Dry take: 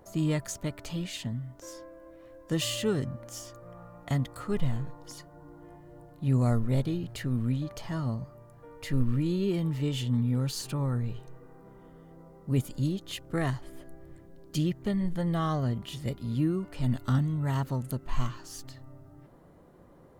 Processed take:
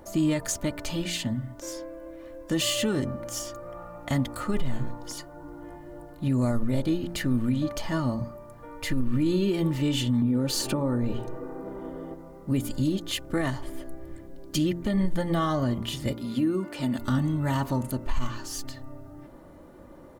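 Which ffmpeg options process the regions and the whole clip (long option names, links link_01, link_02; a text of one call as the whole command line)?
ffmpeg -i in.wav -filter_complex "[0:a]asettb=1/sr,asplit=3[link_01][link_02][link_03];[link_01]atrim=end=10.224[link_04];[link_02]atrim=start=10.22:end=12.14,asetpts=PTS-STARTPTS,afade=type=in:duration=0.004:curve=qsin,afade=type=out:start_time=1.916:duration=0.004:curve=qsin,equalizer=frequency=450:width=0.51:gain=10.5,acompressor=threshold=-27dB:ratio=6:attack=3.2:release=140:knee=1:detection=peak[link_05];[link_03]atrim=start=12.136[link_06];[link_04][link_05]acrossfade=duration=0.004:curve1=hsin:curve2=qsin[link_07];[link_07][link_06]acrossfade=duration=0.004:curve1=qsin:curve2=hsin,asettb=1/sr,asplit=3[link_08][link_09][link_10];[link_08]atrim=end=16.134[link_11];[link_09]atrim=start=16.13:end=16.99,asetpts=PTS-STARTPTS,afade=type=in:duration=0.004:curve=qsin,afade=type=out:start_time=0.856:duration=0.004:curve=qsin,highpass=180,acompressor=threshold=-29dB:ratio=6:attack=3.2:release=140:knee=1:detection=peak[link_12];[link_10]atrim=start=16.986[link_13];[link_11][link_12]acrossfade=duration=0.004:curve1=hsin:curve2=qsin[link_14];[link_14][link_13]acrossfade=duration=0.004:curve1=qsin:curve2=hsin,aecho=1:1:3.4:0.47,bandreject=frequency=57.59:width_type=h:width=4,bandreject=frequency=115.18:width_type=h:width=4,bandreject=frequency=172.77:width_type=h:width=4,bandreject=frequency=230.36:width_type=h:width=4,bandreject=frequency=287.95:width_type=h:width=4,bandreject=frequency=345.54:width_type=h:width=4,bandreject=frequency=403.13:width_type=h:width=4,bandreject=frequency=460.72:width_type=h:width=4,bandreject=frequency=518.31:width_type=h:width=4,bandreject=frequency=575.9:width_type=h:width=4,bandreject=frequency=633.49:width_type=h:width=4,bandreject=frequency=691.08:width_type=h:width=4,bandreject=frequency=748.67:width_type=h:width=4,bandreject=frequency=806.26:width_type=h:width=4,bandreject=frequency=863.85:width_type=h:width=4,bandreject=frequency=921.44:width_type=h:width=4,bandreject=frequency=979.03:width_type=h:width=4,bandreject=frequency=1036.62:width_type=h:width=4,bandreject=frequency=1094.21:width_type=h:width=4,bandreject=frequency=1151.8:width_type=h:width=4,bandreject=frequency=1209.39:width_type=h:width=4,alimiter=limit=-23.5dB:level=0:latency=1:release=102,volume=7dB" out.wav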